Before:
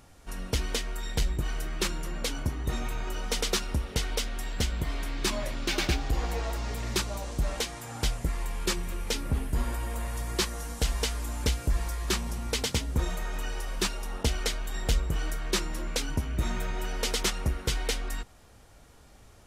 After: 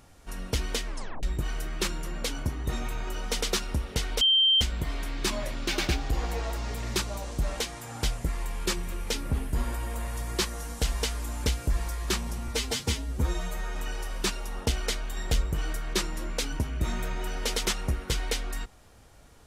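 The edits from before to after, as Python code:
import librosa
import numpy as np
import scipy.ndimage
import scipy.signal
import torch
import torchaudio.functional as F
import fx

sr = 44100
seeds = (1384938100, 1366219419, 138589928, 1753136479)

y = fx.edit(x, sr, fx.tape_stop(start_s=0.87, length_s=0.36),
    fx.bleep(start_s=4.21, length_s=0.4, hz=3140.0, db=-18.0),
    fx.stretch_span(start_s=12.48, length_s=0.85, factor=1.5), tone=tone)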